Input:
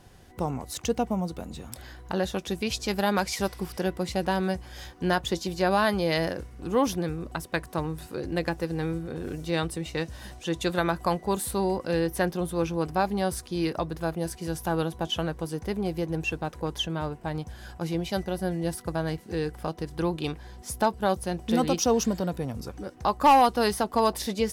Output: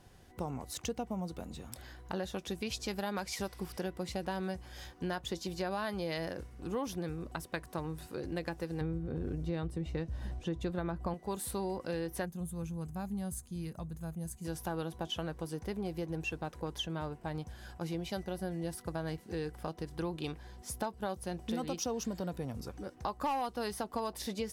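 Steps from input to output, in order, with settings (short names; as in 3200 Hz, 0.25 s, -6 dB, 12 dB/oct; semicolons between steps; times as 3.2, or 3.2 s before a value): 8.81–11.14 tilt -3 dB/oct; 12.25–14.45 spectral gain 240–6100 Hz -13 dB; compressor 4:1, threshold -27 dBFS, peak gain reduction 10.5 dB; gain -6 dB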